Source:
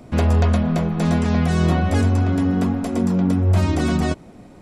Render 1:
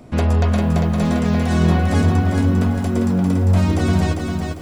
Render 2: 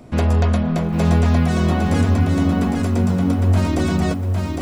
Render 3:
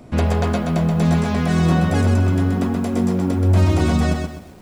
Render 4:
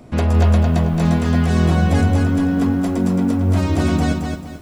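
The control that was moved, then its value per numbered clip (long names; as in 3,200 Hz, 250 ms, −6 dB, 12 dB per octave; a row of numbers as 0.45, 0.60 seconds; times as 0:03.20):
feedback echo at a low word length, delay time: 399, 807, 128, 220 milliseconds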